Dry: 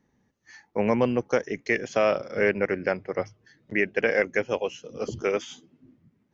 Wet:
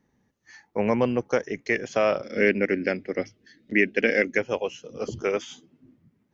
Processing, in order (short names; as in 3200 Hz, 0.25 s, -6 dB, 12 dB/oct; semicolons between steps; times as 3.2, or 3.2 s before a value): 2.24–4.38 ten-band EQ 125 Hz -9 dB, 250 Hz +11 dB, 1000 Hz -12 dB, 2000 Hz +5 dB, 4000 Hz +6 dB